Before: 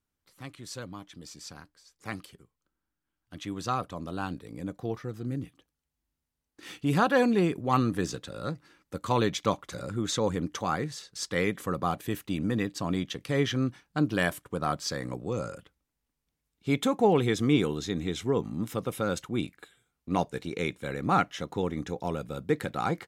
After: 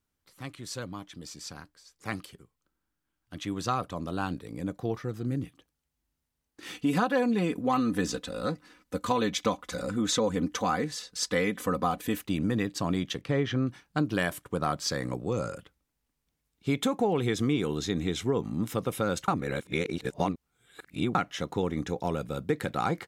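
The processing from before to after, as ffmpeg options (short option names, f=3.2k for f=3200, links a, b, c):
-filter_complex "[0:a]asettb=1/sr,asplit=3[a][b][c];[a]atrim=end=6.744[d];[b]atrim=start=6.74:end=12.24,asetpts=PTS-STARTPTS,afade=t=in:d=0.004:c=qsin,afade=t=out:st=5.496:d=0.004:c=qsin,aecho=1:1:4:0.65,atrim=end_sample=242550[e];[c]atrim=start=12.236[f];[d][e]acrossfade=d=0.004:c1=hsin:c2=qsin[g];[g][f]acrossfade=d=0.004:c1=qsin:c2=hsin,asettb=1/sr,asplit=3[h][i][j];[h]atrim=end=13.214[k];[i]atrim=start=13.21:end=13.67,asetpts=PTS-STARTPTS,afade=t=in:d=0.004:c=qsin,afade=t=out:st=0.456:d=0.004:c=qsin,aemphasis=mode=reproduction:type=75fm[l];[j]atrim=start=13.666[m];[k][l]acrossfade=d=0.004:c1=hsin:c2=qsin[n];[n][m]acrossfade=d=0.004:c1=qsin:c2=hsin,asplit=3[o][p][q];[o]atrim=end=19.282[r];[p]atrim=start=19.278:end=21.152,asetpts=PTS-STARTPTS,areverse[s];[q]atrim=start=21.148[t];[r][s]acrossfade=d=0.004:c1=hsin:c2=hsin[u];[u][t]acrossfade=d=0.004:c1=hsin:c2=hsin,acompressor=threshold=-25dB:ratio=6,volume=2.5dB"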